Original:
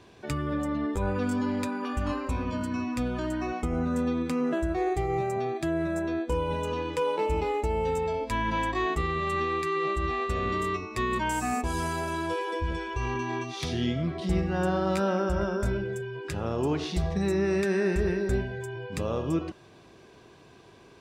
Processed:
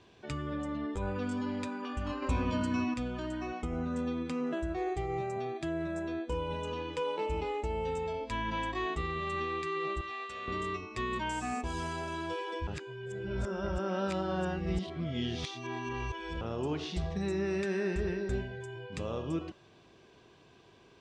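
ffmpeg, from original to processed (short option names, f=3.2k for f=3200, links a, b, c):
-filter_complex "[0:a]asettb=1/sr,asplit=3[a][b][c];[a]atrim=end=2.224[d];[b]atrim=start=2.22:end=2.94,asetpts=PTS-STARTPTS,afade=t=in:d=0.004:c=qsin,afade=t=out:st=0.716:d=0.004:c=qsin,acontrast=54[e];[c]atrim=start=2.936[f];[d][e]acrossfade=d=0.004:c1=hsin:c2=qsin[g];[g][f]acrossfade=d=0.004:c1=qsin:c2=hsin,asettb=1/sr,asplit=3[h][i][j];[h]atrim=end=10.014[k];[i]atrim=start=10.01:end=10.48,asetpts=PTS-STARTPTS,afade=t=in:d=0.004:c=qsin,afade=t=out:st=0.466:d=0.004:c=qsin,highpass=f=1.2k:p=1[l];[j]atrim=start=10.476[m];[k][l]acrossfade=d=0.004:c1=hsin:c2=qsin[n];[n][m]acrossfade=d=0.004:c1=qsin:c2=hsin,asplit=3[o][p][q];[o]atrim=end=12.672[r];[p]atrim=start=12.668:end=16.412,asetpts=PTS-STARTPTS,areverse[s];[q]atrim=start=16.408[t];[r][s]acrossfade=d=0.004:c1=hsin:c2=hsin[u];[u][t]acrossfade=d=0.004:c1=hsin:c2=hsin,lowpass=f=8.1k:w=0.5412,lowpass=f=8.1k:w=1.3066,equalizer=f=3.1k:w=2.7:g=4.5,bandreject=f=284.7:t=h:w=4,bandreject=f=569.4:t=h:w=4,bandreject=f=854.1:t=h:w=4,bandreject=f=1.1388k:t=h:w=4,bandreject=f=1.4235k:t=h:w=4,bandreject=f=1.7082k:t=h:w=4,bandreject=f=1.9929k:t=h:w=4,bandreject=f=2.2776k:t=h:w=4,bandreject=f=2.5623k:t=h:w=4,bandreject=f=2.847k:t=h:w=4,bandreject=f=3.1317k:t=h:w=4,bandreject=f=3.4164k:t=h:w=4,bandreject=f=3.7011k:t=h:w=4,bandreject=f=3.9858k:t=h:w=4,bandreject=f=4.2705k:t=h:w=4,bandreject=f=4.5552k:t=h:w=4,bandreject=f=4.8399k:t=h:w=4,bandreject=f=5.1246k:t=h:w=4,bandreject=f=5.4093k:t=h:w=4,bandreject=f=5.694k:t=h:w=4,bandreject=f=5.9787k:t=h:w=4,bandreject=f=6.2634k:t=h:w=4,bandreject=f=6.5481k:t=h:w=4,bandreject=f=6.8328k:t=h:w=4,bandreject=f=7.1175k:t=h:w=4,bandreject=f=7.4022k:t=h:w=4,bandreject=f=7.6869k:t=h:w=4,bandreject=f=7.9716k:t=h:w=4,bandreject=f=8.2563k:t=h:w=4,bandreject=f=8.541k:t=h:w=4,bandreject=f=8.8257k:t=h:w=4,bandreject=f=9.1104k:t=h:w=4,bandreject=f=9.3951k:t=h:w=4,bandreject=f=9.6798k:t=h:w=4,volume=-6.5dB"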